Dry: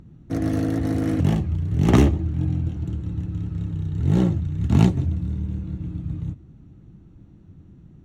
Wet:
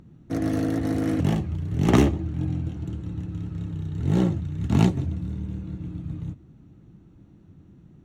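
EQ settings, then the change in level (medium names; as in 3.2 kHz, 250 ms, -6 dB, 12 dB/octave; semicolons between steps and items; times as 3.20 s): bass shelf 110 Hz -8.5 dB; 0.0 dB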